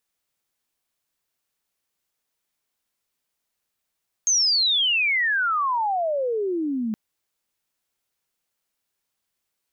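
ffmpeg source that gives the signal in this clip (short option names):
-f lavfi -i "aevalsrc='pow(10,(-16.5-6.5*t/2.67)/20)*sin(2*PI*6500*2.67/log(210/6500)*(exp(log(210/6500)*t/2.67)-1))':d=2.67:s=44100"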